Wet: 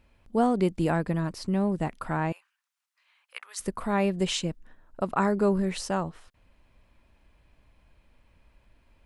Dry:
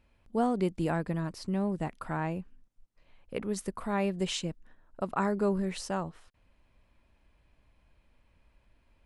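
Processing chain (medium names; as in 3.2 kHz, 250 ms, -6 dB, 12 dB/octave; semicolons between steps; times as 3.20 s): 2.32–3.60 s: high-pass 1.1 kHz 24 dB/octave; trim +4.5 dB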